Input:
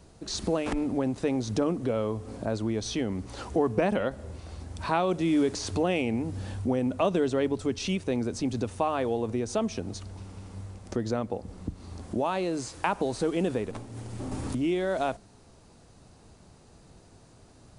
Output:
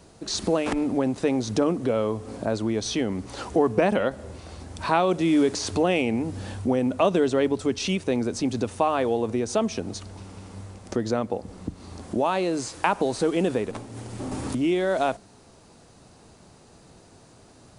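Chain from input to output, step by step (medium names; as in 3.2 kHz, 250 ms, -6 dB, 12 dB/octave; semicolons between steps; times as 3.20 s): bass shelf 99 Hz -10 dB; trim +5 dB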